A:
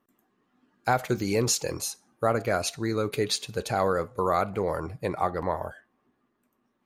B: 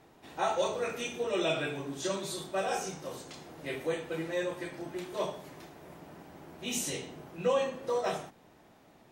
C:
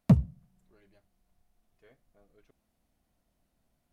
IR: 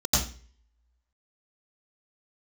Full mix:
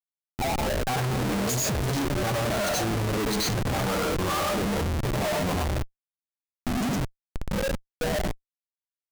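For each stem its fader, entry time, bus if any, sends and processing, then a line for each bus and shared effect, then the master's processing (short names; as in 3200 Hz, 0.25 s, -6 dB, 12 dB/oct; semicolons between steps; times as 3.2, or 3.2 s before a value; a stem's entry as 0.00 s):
-0.5 dB, 0.00 s, send -14 dB, moving spectral ripple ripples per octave 1.9, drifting +1.5 Hz, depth 17 dB; upward expander 1.5:1, over -30 dBFS
-3.5 dB, 0.00 s, send -10.5 dB, spectral contrast raised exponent 3.8; auto duck -20 dB, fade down 0.30 s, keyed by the first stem
-6.0 dB, 1.60 s, no send, half-waves squared off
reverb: on, RT60 0.40 s, pre-delay 84 ms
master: Schmitt trigger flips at -32.5 dBFS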